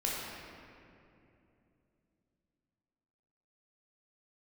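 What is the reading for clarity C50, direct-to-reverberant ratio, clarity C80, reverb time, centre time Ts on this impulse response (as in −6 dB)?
−2.0 dB, −5.0 dB, 0.0 dB, 2.8 s, 139 ms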